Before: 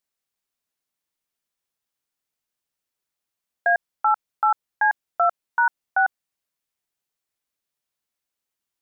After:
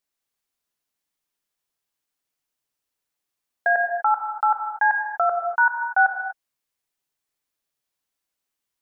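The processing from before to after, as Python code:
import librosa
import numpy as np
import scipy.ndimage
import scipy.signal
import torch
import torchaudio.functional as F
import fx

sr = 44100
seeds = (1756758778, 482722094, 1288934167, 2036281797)

y = fx.rev_gated(x, sr, seeds[0], gate_ms=270, shape='flat', drr_db=3.5)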